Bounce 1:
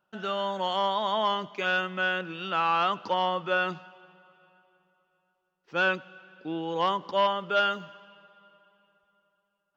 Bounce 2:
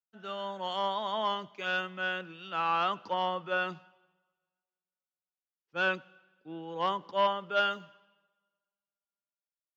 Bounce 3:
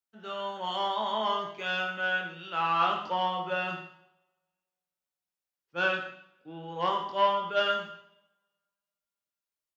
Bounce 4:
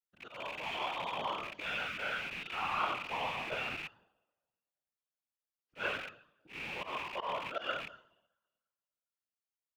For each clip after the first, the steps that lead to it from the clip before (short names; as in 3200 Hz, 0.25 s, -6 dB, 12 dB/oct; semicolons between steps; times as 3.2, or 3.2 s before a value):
three-band expander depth 70%; gain -5 dB
doubler 23 ms -4.5 dB; reverb RT60 0.60 s, pre-delay 43 ms, DRR 5 dB
rattling part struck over -53 dBFS, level -21 dBFS; auto swell 0.116 s; whisperiser; gain -8.5 dB